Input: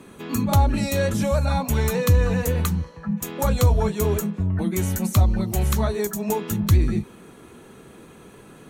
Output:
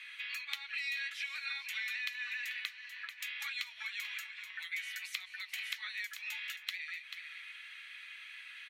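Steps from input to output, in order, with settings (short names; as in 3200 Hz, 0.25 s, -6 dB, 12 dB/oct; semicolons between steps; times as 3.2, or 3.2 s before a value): elliptic high-pass 2000 Hz, stop band 80 dB; air absorption 390 m; on a send: echo 0.438 s -15.5 dB; on the sum: compressor 2.5:1, threshold -58 dBFS, peak gain reduction 14 dB; gain +16.5 dB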